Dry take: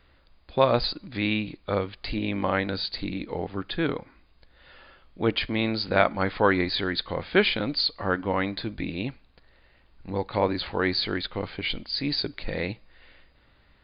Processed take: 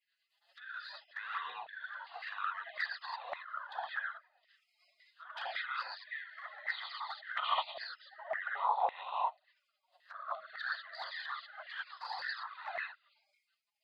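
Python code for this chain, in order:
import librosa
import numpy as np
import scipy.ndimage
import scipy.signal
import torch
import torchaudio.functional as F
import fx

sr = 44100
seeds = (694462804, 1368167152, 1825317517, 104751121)

y = fx.high_shelf(x, sr, hz=4200.0, db=-5.5)
y = fx.fixed_phaser(y, sr, hz=610.0, stages=6)
y = fx.level_steps(y, sr, step_db=19)
y = scipy.signal.sosfilt(scipy.signal.butter(2, 59.0, 'highpass', fs=sr, output='sos'), y)
y = fx.rev_gated(y, sr, seeds[0], gate_ms=220, shape='rising', drr_db=-7.0)
y = fx.env_lowpass_down(y, sr, base_hz=1300.0, full_db=-38.0)
y = fx.spec_gate(y, sr, threshold_db=-30, keep='weak')
y = fx.band_shelf(y, sr, hz=650.0, db=11.0, octaves=1.7, at=(7.99, 10.5))
y = fx.env_flanger(y, sr, rest_ms=6.1, full_db=-49.5)
y = fx.filter_lfo_highpass(y, sr, shape='saw_down', hz=1.8, low_hz=660.0, high_hz=2000.0, q=5.5)
y = y * librosa.db_to_amplitude(13.0)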